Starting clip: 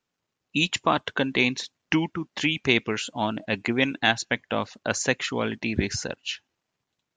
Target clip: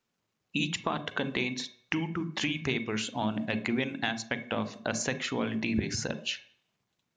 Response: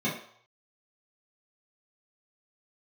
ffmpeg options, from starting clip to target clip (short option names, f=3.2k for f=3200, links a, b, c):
-filter_complex "[0:a]acompressor=threshold=-28dB:ratio=6,asplit=2[a][b];[1:a]atrim=start_sample=2205,lowshelf=f=190:g=7,adelay=36[c];[b][c]afir=irnorm=-1:irlink=0,volume=-21dB[d];[a][d]amix=inputs=2:normalize=0"